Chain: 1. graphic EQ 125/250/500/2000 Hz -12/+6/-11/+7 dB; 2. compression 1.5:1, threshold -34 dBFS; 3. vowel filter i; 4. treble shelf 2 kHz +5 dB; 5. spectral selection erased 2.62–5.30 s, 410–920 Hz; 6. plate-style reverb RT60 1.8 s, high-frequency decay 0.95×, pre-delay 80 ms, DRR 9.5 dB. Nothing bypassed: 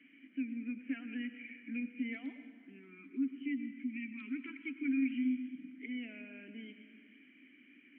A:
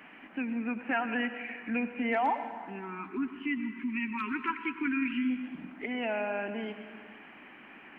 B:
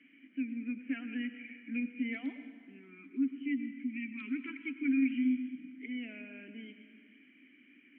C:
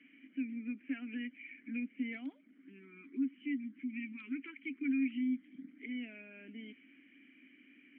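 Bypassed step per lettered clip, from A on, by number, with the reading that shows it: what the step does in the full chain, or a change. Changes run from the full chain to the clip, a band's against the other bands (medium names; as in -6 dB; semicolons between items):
3, momentary loudness spread change -4 LU; 2, loudness change +3.5 LU; 6, momentary loudness spread change -3 LU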